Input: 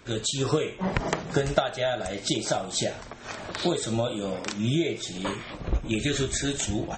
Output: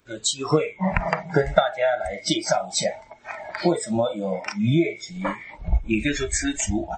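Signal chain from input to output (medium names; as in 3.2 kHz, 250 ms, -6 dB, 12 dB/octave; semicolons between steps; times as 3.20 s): spectral noise reduction 19 dB; trim +6 dB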